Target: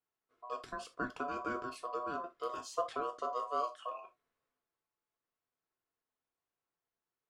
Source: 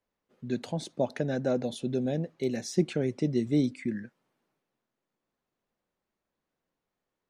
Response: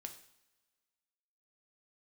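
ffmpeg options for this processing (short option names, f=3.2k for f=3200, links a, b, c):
-filter_complex "[0:a]aeval=exprs='val(0)*sin(2*PI*860*n/s)':c=same[a];[1:a]atrim=start_sample=2205,afade=t=out:st=0.21:d=0.01,atrim=end_sample=9702,asetrate=88200,aresample=44100[b];[a][b]afir=irnorm=-1:irlink=0,volume=4dB"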